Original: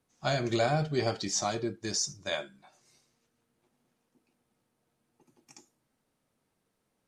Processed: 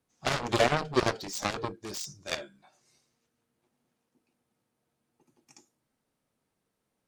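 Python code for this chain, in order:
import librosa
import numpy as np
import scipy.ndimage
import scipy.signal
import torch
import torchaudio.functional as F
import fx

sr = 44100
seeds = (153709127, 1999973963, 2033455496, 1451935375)

y = fx.dynamic_eq(x, sr, hz=450.0, q=1.3, threshold_db=-42.0, ratio=4.0, max_db=6)
y = fx.cheby_harmonics(y, sr, harmonics=(7,), levels_db=(-12,), full_scale_db=-12.0)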